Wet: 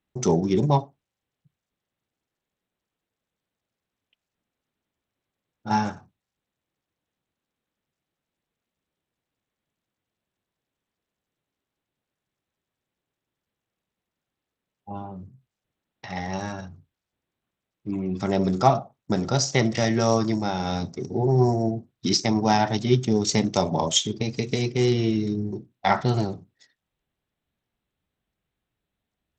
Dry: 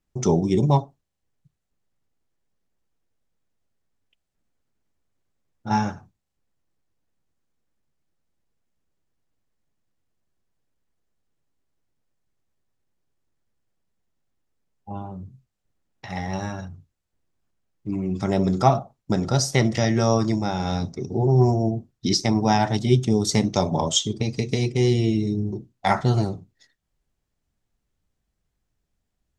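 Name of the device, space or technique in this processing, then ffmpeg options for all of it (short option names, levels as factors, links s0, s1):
Bluetooth headset: -af "highpass=f=140:p=1,aresample=16000,aresample=44100" -ar 32000 -c:a sbc -b:a 64k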